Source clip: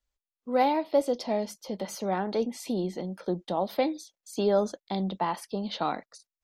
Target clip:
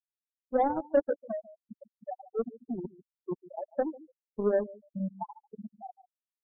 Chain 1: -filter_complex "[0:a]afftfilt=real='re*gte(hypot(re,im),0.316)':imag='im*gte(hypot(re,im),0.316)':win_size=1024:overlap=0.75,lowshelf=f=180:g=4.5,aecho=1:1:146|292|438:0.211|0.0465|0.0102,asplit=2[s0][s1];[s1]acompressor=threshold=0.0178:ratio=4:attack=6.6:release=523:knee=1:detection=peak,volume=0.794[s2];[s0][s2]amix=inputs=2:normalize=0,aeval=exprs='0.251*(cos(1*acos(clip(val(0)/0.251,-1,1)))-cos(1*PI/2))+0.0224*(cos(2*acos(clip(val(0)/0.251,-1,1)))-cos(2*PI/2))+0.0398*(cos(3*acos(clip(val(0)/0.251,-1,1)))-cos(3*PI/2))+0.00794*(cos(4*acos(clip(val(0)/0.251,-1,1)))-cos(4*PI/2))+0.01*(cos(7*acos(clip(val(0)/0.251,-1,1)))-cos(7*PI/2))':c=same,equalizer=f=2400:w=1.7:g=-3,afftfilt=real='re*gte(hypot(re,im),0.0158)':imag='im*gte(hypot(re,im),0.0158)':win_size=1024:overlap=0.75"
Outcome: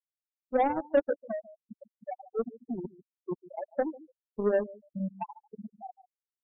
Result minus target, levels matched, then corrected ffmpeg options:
2 kHz band +4.5 dB
-filter_complex "[0:a]afftfilt=real='re*gte(hypot(re,im),0.316)':imag='im*gte(hypot(re,im),0.316)':win_size=1024:overlap=0.75,lowshelf=f=180:g=4.5,aecho=1:1:146|292|438:0.211|0.0465|0.0102,asplit=2[s0][s1];[s1]acompressor=threshold=0.0178:ratio=4:attack=6.6:release=523:knee=1:detection=peak,volume=0.794[s2];[s0][s2]amix=inputs=2:normalize=0,aeval=exprs='0.251*(cos(1*acos(clip(val(0)/0.251,-1,1)))-cos(1*PI/2))+0.0224*(cos(2*acos(clip(val(0)/0.251,-1,1)))-cos(2*PI/2))+0.0398*(cos(3*acos(clip(val(0)/0.251,-1,1)))-cos(3*PI/2))+0.00794*(cos(4*acos(clip(val(0)/0.251,-1,1)))-cos(4*PI/2))+0.01*(cos(7*acos(clip(val(0)/0.251,-1,1)))-cos(7*PI/2))':c=same,equalizer=f=2400:w=1.7:g=-13,afftfilt=real='re*gte(hypot(re,im),0.0158)':imag='im*gte(hypot(re,im),0.0158)':win_size=1024:overlap=0.75"

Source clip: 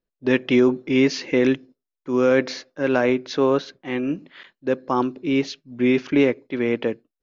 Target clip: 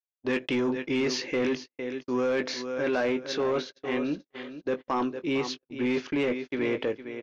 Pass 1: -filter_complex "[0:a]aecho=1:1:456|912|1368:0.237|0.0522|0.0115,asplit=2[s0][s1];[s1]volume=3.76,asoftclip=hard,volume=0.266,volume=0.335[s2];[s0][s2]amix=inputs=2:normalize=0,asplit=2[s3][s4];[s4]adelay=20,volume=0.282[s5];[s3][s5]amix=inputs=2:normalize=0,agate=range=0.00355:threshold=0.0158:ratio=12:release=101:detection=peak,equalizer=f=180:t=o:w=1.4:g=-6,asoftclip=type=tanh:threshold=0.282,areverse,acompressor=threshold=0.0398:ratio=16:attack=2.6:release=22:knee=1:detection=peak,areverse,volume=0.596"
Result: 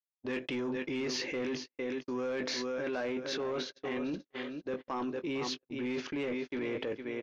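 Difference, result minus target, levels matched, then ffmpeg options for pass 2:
compression: peak gain reduction +8.5 dB
-filter_complex "[0:a]aecho=1:1:456|912|1368:0.237|0.0522|0.0115,asplit=2[s0][s1];[s1]volume=3.76,asoftclip=hard,volume=0.266,volume=0.335[s2];[s0][s2]amix=inputs=2:normalize=0,asplit=2[s3][s4];[s4]adelay=20,volume=0.282[s5];[s3][s5]amix=inputs=2:normalize=0,agate=range=0.00355:threshold=0.0158:ratio=12:release=101:detection=peak,equalizer=f=180:t=o:w=1.4:g=-6,asoftclip=type=tanh:threshold=0.282,areverse,acompressor=threshold=0.112:ratio=16:attack=2.6:release=22:knee=1:detection=peak,areverse,volume=0.596"

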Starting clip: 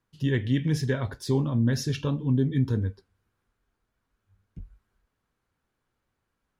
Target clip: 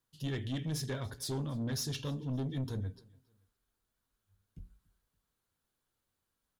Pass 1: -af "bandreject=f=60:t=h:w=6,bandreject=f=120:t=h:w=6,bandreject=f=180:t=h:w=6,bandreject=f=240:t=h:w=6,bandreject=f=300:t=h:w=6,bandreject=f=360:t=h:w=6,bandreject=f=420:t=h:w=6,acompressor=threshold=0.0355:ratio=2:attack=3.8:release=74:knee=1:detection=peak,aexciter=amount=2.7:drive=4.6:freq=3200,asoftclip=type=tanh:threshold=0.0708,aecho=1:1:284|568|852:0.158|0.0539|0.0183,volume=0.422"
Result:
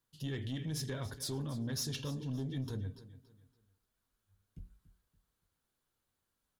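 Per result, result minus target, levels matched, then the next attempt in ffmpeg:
compression: peak gain reduction +6.5 dB; echo-to-direct +9 dB
-af "bandreject=f=60:t=h:w=6,bandreject=f=120:t=h:w=6,bandreject=f=180:t=h:w=6,bandreject=f=240:t=h:w=6,bandreject=f=300:t=h:w=6,bandreject=f=360:t=h:w=6,bandreject=f=420:t=h:w=6,aexciter=amount=2.7:drive=4.6:freq=3200,asoftclip=type=tanh:threshold=0.0708,aecho=1:1:284|568|852:0.158|0.0539|0.0183,volume=0.422"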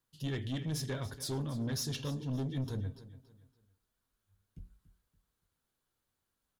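echo-to-direct +9 dB
-af "bandreject=f=60:t=h:w=6,bandreject=f=120:t=h:w=6,bandreject=f=180:t=h:w=6,bandreject=f=240:t=h:w=6,bandreject=f=300:t=h:w=6,bandreject=f=360:t=h:w=6,bandreject=f=420:t=h:w=6,aexciter=amount=2.7:drive=4.6:freq=3200,asoftclip=type=tanh:threshold=0.0708,aecho=1:1:284|568:0.0562|0.0191,volume=0.422"

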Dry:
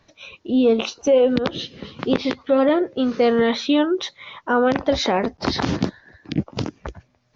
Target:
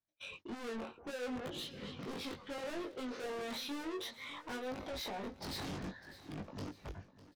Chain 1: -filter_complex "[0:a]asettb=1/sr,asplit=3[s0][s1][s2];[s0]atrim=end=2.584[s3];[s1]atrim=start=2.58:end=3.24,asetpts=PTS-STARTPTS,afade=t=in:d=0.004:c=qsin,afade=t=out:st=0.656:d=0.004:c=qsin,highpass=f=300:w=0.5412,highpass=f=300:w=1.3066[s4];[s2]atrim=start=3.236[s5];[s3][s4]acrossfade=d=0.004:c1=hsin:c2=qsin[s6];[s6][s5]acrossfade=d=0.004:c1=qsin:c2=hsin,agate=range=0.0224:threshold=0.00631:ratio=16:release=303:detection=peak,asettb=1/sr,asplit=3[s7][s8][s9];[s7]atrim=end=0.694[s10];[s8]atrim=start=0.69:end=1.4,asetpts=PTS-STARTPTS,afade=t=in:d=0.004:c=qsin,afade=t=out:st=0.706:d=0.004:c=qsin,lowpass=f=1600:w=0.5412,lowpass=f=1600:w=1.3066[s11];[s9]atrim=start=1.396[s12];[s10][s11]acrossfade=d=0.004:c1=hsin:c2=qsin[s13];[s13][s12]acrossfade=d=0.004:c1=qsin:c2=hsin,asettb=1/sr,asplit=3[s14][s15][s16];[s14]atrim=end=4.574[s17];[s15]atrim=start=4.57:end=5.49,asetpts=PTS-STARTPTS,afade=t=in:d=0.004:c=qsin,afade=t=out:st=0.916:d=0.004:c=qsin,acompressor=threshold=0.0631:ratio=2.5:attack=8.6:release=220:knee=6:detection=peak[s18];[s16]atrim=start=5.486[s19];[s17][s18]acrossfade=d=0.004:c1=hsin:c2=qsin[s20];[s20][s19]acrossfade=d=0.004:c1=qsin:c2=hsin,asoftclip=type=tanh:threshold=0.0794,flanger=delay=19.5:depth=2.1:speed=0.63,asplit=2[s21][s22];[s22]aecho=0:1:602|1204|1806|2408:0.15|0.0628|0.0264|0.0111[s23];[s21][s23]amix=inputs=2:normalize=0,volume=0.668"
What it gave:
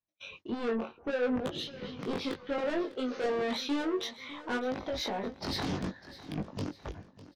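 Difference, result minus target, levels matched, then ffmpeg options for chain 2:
saturation: distortion -5 dB
-filter_complex "[0:a]asettb=1/sr,asplit=3[s0][s1][s2];[s0]atrim=end=2.584[s3];[s1]atrim=start=2.58:end=3.24,asetpts=PTS-STARTPTS,afade=t=in:d=0.004:c=qsin,afade=t=out:st=0.656:d=0.004:c=qsin,highpass=f=300:w=0.5412,highpass=f=300:w=1.3066[s4];[s2]atrim=start=3.236[s5];[s3][s4]acrossfade=d=0.004:c1=hsin:c2=qsin[s6];[s6][s5]acrossfade=d=0.004:c1=qsin:c2=hsin,agate=range=0.0224:threshold=0.00631:ratio=16:release=303:detection=peak,asettb=1/sr,asplit=3[s7][s8][s9];[s7]atrim=end=0.694[s10];[s8]atrim=start=0.69:end=1.4,asetpts=PTS-STARTPTS,afade=t=in:d=0.004:c=qsin,afade=t=out:st=0.706:d=0.004:c=qsin,lowpass=f=1600:w=0.5412,lowpass=f=1600:w=1.3066[s11];[s9]atrim=start=1.396[s12];[s10][s11]acrossfade=d=0.004:c1=hsin:c2=qsin[s13];[s13][s12]acrossfade=d=0.004:c1=qsin:c2=hsin,asettb=1/sr,asplit=3[s14][s15][s16];[s14]atrim=end=4.574[s17];[s15]atrim=start=4.57:end=5.49,asetpts=PTS-STARTPTS,afade=t=in:d=0.004:c=qsin,afade=t=out:st=0.916:d=0.004:c=qsin,acompressor=threshold=0.0631:ratio=2.5:attack=8.6:release=220:knee=6:detection=peak[s18];[s16]atrim=start=5.486[s19];[s17][s18]acrossfade=d=0.004:c1=hsin:c2=qsin[s20];[s20][s19]acrossfade=d=0.004:c1=qsin:c2=hsin,asoftclip=type=tanh:threshold=0.02,flanger=delay=19.5:depth=2.1:speed=0.63,asplit=2[s21][s22];[s22]aecho=0:1:602|1204|1806|2408:0.15|0.0628|0.0264|0.0111[s23];[s21][s23]amix=inputs=2:normalize=0,volume=0.668"

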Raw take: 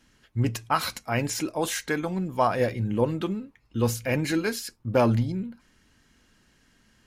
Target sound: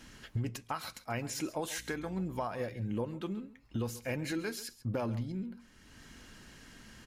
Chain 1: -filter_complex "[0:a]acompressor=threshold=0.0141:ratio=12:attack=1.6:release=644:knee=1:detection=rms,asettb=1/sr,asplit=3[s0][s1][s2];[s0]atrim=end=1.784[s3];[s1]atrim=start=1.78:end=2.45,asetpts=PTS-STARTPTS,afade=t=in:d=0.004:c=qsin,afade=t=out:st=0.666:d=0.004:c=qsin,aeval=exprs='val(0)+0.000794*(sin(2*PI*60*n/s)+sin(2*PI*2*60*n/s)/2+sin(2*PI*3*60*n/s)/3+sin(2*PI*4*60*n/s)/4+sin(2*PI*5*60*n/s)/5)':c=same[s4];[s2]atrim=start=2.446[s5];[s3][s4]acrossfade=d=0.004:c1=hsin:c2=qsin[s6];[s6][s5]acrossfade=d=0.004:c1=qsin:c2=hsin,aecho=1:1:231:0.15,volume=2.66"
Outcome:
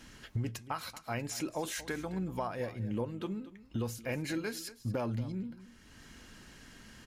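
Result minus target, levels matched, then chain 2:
echo 95 ms late
-filter_complex "[0:a]acompressor=threshold=0.0141:ratio=12:attack=1.6:release=644:knee=1:detection=rms,asettb=1/sr,asplit=3[s0][s1][s2];[s0]atrim=end=1.784[s3];[s1]atrim=start=1.78:end=2.45,asetpts=PTS-STARTPTS,afade=t=in:d=0.004:c=qsin,afade=t=out:st=0.666:d=0.004:c=qsin,aeval=exprs='val(0)+0.000794*(sin(2*PI*60*n/s)+sin(2*PI*2*60*n/s)/2+sin(2*PI*3*60*n/s)/3+sin(2*PI*4*60*n/s)/4+sin(2*PI*5*60*n/s)/5)':c=same[s4];[s2]atrim=start=2.446[s5];[s3][s4]acrossfade=d=0.004:c1=hsin:c2=qsin[s6];[s6][s5]acrossfade=d=0.004:c1=qsin:c2=hsin,aecho=1:1:136:0.15,volume=2.66"

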